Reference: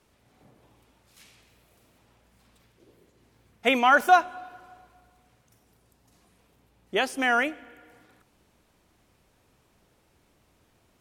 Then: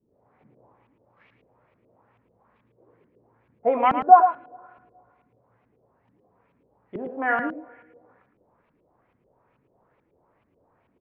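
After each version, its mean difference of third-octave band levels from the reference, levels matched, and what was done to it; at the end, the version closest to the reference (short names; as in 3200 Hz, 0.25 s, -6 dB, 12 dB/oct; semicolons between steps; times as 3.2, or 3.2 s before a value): 8.0 dB: graphic EQ 125/250/500/1000/2000/8000 Hz +9/+4/+11/+10/+6/-9 dB; flange 0.48 Hz, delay 9.4 ms, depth 9.4 ms, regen -54%; LFO low-pass saw up 2.3 Hz 210–2900 Hz; on a send: echo 0.11 s -8.5 dB; on the sum: gain -9 dB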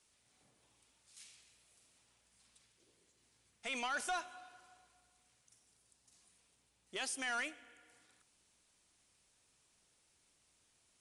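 6.0 dB: pre-emphasis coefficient 0.9; limiter -28 dBFS, peak gain reduction 11 dB; soft clip -34 dBFS, distortion -14 dB; downsampling 22050 Hz; gain +2 dB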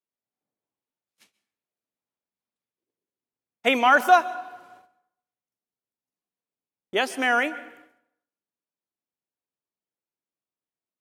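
2.0 dB: HPF 190 Hz 12 dB/oct; gate -52 dBFS, range -34 dB; wow and flutter 19 cents; plate-style reverb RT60 0.7 s, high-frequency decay 0.65×, pre-delay 0.115 s, DRR 17.5 dB; gain +1.5 dB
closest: third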